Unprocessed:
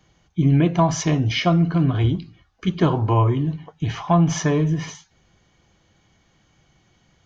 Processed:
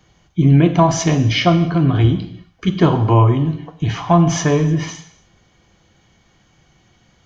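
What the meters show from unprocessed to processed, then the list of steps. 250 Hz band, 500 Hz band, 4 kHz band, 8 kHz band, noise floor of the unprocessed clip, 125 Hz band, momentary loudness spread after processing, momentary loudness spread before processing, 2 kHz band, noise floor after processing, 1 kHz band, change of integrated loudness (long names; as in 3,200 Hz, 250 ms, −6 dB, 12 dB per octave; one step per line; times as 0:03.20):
+4.5 dB, +5.5 dB, +5.0 dB, can't be measured, −62 dBFS, +4.5 dB, 11 LU, 11 LU, +5.0 dB, −57 dBFS, +5.0 dB, +5.0 dB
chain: reverb whose tail is shaped and stops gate 310 ms falling, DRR 8.5 dB
level +4.5 dB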